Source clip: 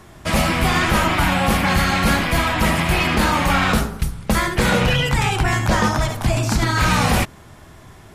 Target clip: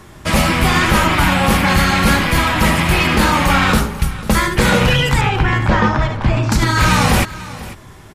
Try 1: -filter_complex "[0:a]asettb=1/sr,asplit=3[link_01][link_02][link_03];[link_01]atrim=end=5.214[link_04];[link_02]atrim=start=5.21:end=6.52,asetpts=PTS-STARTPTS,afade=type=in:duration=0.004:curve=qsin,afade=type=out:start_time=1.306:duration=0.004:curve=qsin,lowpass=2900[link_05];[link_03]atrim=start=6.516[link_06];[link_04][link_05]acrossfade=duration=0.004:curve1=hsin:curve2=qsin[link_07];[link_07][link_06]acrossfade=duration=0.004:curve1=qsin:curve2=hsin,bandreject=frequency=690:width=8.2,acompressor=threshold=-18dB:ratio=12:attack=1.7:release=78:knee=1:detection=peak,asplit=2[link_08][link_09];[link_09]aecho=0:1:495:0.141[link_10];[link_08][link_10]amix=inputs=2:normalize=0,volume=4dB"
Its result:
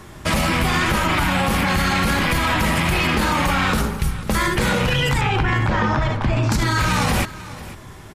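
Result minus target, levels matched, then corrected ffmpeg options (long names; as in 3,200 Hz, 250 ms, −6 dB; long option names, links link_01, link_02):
downward compressor: peak gain reduction +9 dB
-filter_complex "[0:a]asettb=1/sr,asplit=3[link_01][link_02][link_03];[link_01]atrim=end=5.214[link_04];[link_02]atrim=start=5.21:end=6.52,asetpts=PTS-STARTPTS,afade=type=in:duration=0.004:curve=qsin,afade=type=out:start_time=1.306:duration=0.004:curve=qsin,lowpass=2900[link_05];[link_03]atrim=start=6.516[link_06];[link_04][link_05]acrossfade=duration=0.004:curve1=hsin:curve2=qsin[link_07];[link_07][link_06]acrossfade=duration=0.004:curve1=qsin:curve2=hsin,bandreject=frequency=690:width=8.2,asplit=2[link_08][link_09];[link_09]aecho=0:1:495:0.141[link_10];[link_08][link_10]amix=inputs=2:normalize=0,volume=4dB"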